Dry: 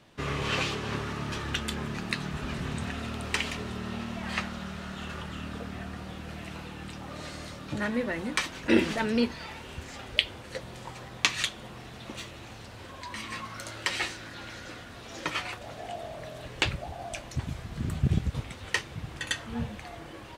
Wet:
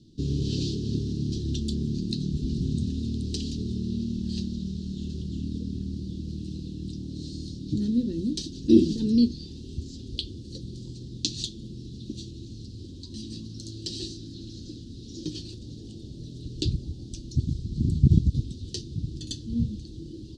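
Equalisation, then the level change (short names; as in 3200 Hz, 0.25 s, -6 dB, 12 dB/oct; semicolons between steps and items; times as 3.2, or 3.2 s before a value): elliptic band-stop 330–4300 Hz, stop band 40 dB; air absorption 120 m; +8.0 dB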